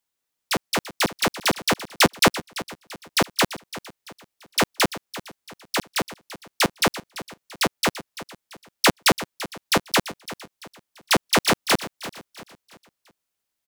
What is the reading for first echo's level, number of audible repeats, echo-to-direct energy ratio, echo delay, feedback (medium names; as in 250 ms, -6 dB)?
-15.0 dB, 3, -14.0 dB, 339 ms, 40%